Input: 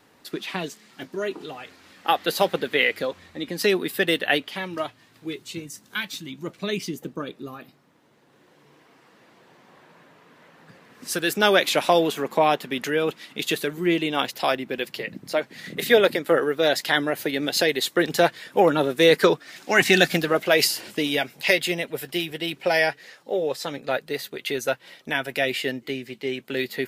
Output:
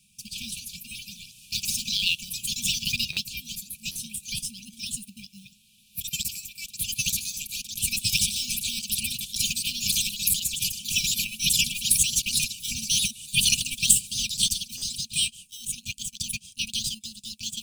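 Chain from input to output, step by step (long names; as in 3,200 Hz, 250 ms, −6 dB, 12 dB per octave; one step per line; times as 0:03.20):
gliding playback speed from 133% → 172%
parametric band 9,200 Hz +14 dB 0.68 octaves
in parallel at −6 dB: decimation without filtering 19×
on the sum: delay with pitch and tempo change per echo 221 ms, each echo +3 semitones, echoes 2
linear-phase brick-wall band-stop 230–2,300 Hz
buffer that repeats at 0:03.12/0:03.91/0:14.77, samples 512, times 3
level −4 dB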